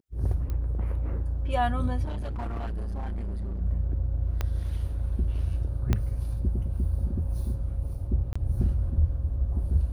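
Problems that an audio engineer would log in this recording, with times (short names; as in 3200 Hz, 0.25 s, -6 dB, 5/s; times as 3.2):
0.5 pop -22 dBFS
2.05–3.62 clipped -29 dBFS
4.41 pop -15 dBFS
5.93 pop -12 dBFS
8.33–8.36 gap 25 ms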